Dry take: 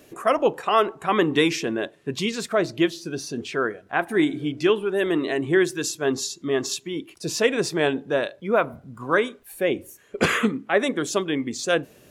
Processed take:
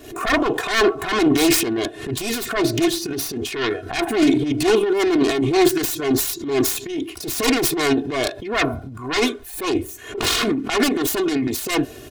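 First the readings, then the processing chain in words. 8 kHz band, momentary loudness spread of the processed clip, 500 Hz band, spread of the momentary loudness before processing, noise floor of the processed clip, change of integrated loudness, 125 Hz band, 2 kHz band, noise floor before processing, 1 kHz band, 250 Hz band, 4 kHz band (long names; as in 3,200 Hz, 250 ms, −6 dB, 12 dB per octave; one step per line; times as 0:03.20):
+7.0 dB, 8 LU, +1.5 dB, 8 LU, −38 dBFS, +3.5 dB, +3.5 dB, +2.0 dB, −54 dBFS, +1.5 dB, +5.5 dB, +6.0 dB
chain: phase distortion by the signal itself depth 0.65 ms
parametric band 3,900 Hz +2.5 dB 0.24 octaves
comb filter 2.8 ms, depth 89%
transient designer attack −9 dB, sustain +10 dB
low-shelf EQ 160 Hz +6.5 dB
background raised ahead of every attack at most 89 dB per second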